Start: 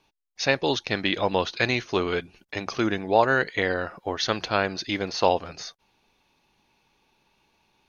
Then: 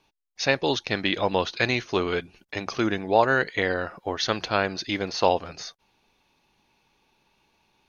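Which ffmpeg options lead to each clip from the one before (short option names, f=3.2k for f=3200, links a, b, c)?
-af anull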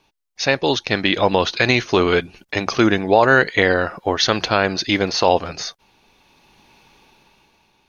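-af "dynaudnorm=f=250:g=9:m=13.5dB,alimiter=level_in=6dB:limit=-1dB:release=50:level=0:latency=1,volume=-1dB"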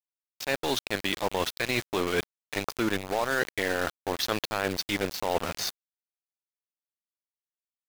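-af "areverse,acompressor=threshold=-26dB:ratio=4,areverse,aeval=exprs='val(0)*gte(abs(val(0)),0.0376)':c=same"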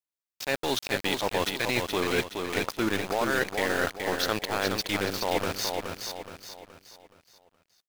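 -af "aecho=1:1:422|844|1266|1688|2110:0.562|0.236|0.0992|0.0417|0.0175"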